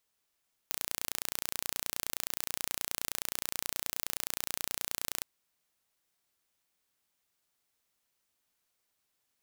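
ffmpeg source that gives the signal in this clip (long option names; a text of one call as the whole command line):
ffmpeg -f lavfi -i "aevalsrc='0.501*eq(mod(n,1495),0)':duration=4.51:sample_rate=44100" out.wav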